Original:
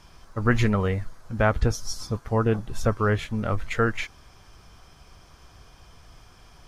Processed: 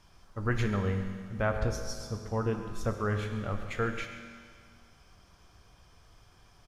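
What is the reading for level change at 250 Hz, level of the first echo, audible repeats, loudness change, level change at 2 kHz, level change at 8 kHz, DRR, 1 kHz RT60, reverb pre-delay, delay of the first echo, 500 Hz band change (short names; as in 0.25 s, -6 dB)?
-7.5 dB, -14.5 dB, 1, -7.0 dB, -7.5 dB, -7.5 dB, 5.0 dB, 2.0 s, 6 ms, 0.136 s, -7.0 dB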